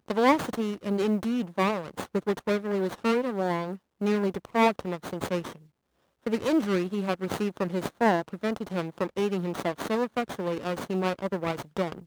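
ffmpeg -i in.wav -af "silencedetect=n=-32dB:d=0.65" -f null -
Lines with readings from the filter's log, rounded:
silence_start: 5.50
silence_end: 6.27 | silence_duration: 0.76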